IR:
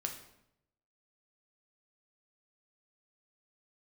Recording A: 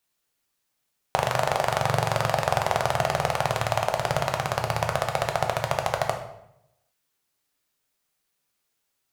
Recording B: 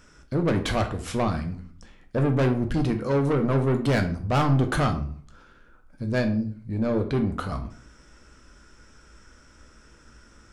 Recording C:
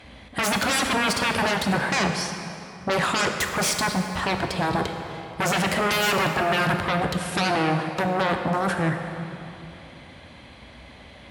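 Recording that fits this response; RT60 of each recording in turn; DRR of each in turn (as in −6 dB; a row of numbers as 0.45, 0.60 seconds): A; 0.80, 0.50, 2.8 seconds; 3.0, 5.0, 4.5 decibels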